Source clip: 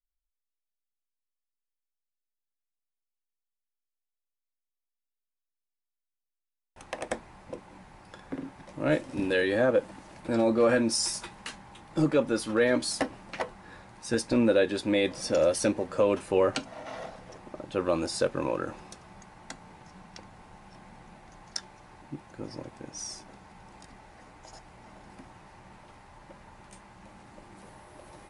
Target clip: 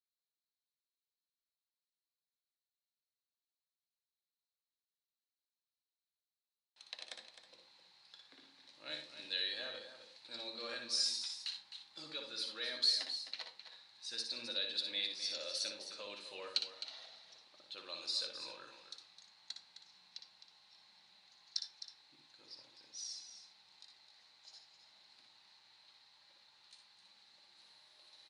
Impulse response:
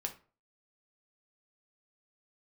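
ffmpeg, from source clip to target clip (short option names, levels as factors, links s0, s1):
-filter_complex "[0:a]bandpass=f=4100:t=q:w=9.6:csg=0,aecho=1:1:260:0.299,asplit=2[s0][s1];[1:a]atrim=start_sample=2205,lowshelf=f=380:g=8.5,adelay=59[s2];[s1][s2]afir=irnorm=-1:irlink=0,volume=0.501[s3];[s0][s3]amix=inputs=2:normalize=0,volume=2.82"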